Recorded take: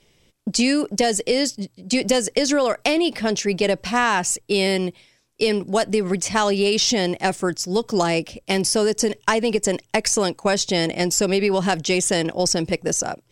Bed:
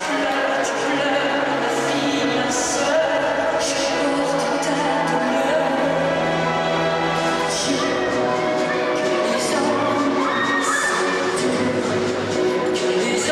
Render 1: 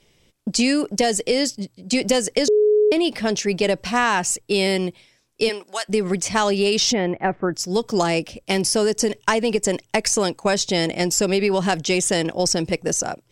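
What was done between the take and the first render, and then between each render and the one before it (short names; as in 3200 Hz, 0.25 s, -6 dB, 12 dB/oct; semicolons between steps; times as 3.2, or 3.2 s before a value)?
2.48–2.92 bleep 422 Hz -12.5 dBFS; 5.48–5.88 HPF 490 Hz -> 1500 Hz; 6.92–7.53 LPF 2600 Hz -> 1600 Hz 24 dB/oct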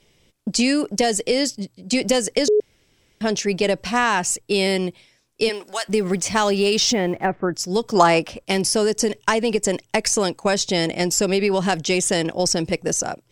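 2.6–3.21 room tone; 5.54–7.26 G.711 law mismatch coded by mu; 7.95–8.45 bell 1100 Hz +10.5 dB 1.7 oct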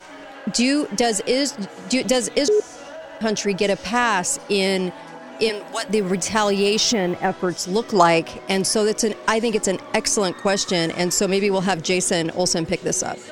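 add bed -18.5 dB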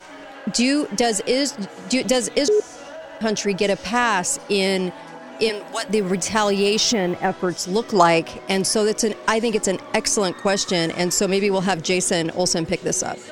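nothing audible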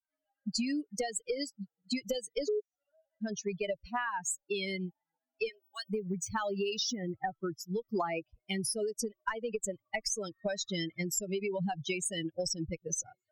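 per-bin expansion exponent 3; compressor 6:1, threshold -31 dBFS, peak gain reduction 16.5 dB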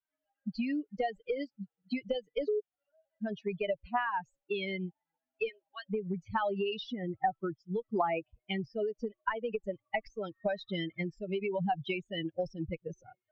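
steep low-pass 3400 Hz 36 dB/oct; dynamic EQ 770 Hz, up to +6 dB, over -50 dBFS, Q 2.4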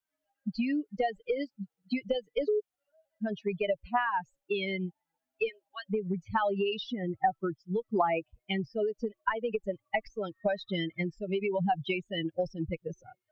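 gain +3 dB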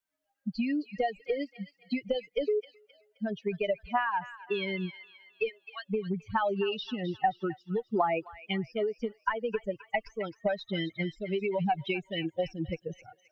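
thin delay 0.263 s, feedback 40%, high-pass 1600 Hz, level -10 dB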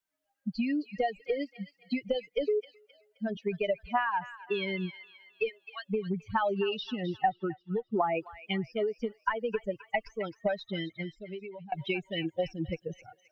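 2.32–3.37 notches 50/100/150/200/250 Hz; 7.29–8.15 air absorption 330 m; 10.42–11.72 fade out, to -21.5 dB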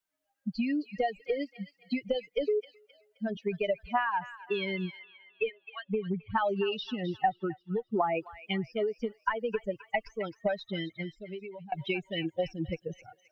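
4.99–6.38 steep low-pass 3600 Hz 48 dB/oct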